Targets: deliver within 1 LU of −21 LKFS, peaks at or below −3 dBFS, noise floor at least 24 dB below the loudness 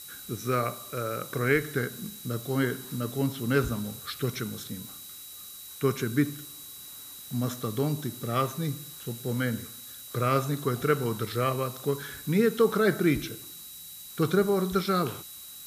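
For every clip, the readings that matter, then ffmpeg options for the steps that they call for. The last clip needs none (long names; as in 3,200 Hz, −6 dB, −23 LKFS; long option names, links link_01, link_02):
interfering tone 3,900 Hz; level of the tone −49 dBFS; background noise floor −45 dBFS; target noise floor −53 dBFS; integrated loudness −29.0 LKFS; sample peak −9.5 dBFS; target loudness −21.0 LKFS
→ -af "bandreject=frequency=3900:width=30"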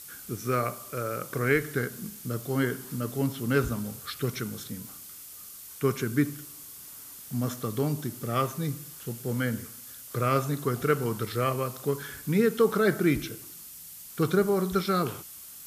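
interfering tone none found; background noise floor −45 dBFS; target noise floor −53 dBFS
→ -af "afftdn=noise_reduction=8:noise_floor=-45"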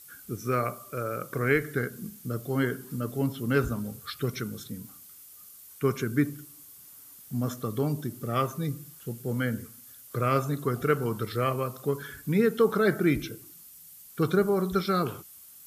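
background noise floor −50 dBFS; target noise floor −53 dBFS
→ -af "afftdn=noise_reduction=6:noise_floor=-50"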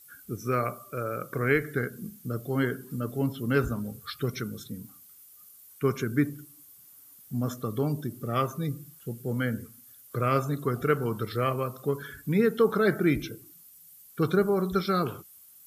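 background noise floor −53 dBFS; integrated loudness −29.0 LKFS; sample peak −9.5 dBFS; target loudness −21.0 LKFS
→ -af "volume=8dB,alimiter=limit=-3dB:level=0:latency=1"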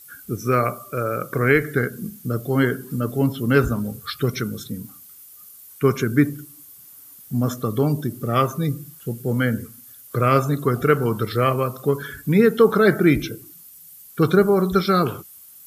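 integrated loudness −21.0 LKFS; sample peak −3.0 dBFS; background noise floor −45 dBFS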